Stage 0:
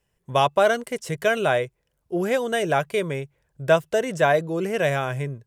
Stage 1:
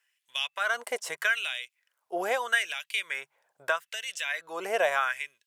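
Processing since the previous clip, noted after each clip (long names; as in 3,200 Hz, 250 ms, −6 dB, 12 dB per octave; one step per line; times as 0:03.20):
downward compressor 10 to 1, threshold −21 dBFS, peak gain reduction 10 dB
auto-filter high-pass sine 0.79 Hz 720–3,000 Hz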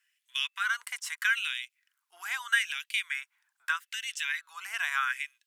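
inverse Chebyshev high-pass filter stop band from 610 Hz, stop band 40 dB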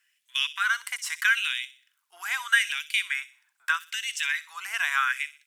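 delay with a high-pass on its return 62 ms, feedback 39%, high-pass 3,200 Hz, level −11 dB
level +4.5 dB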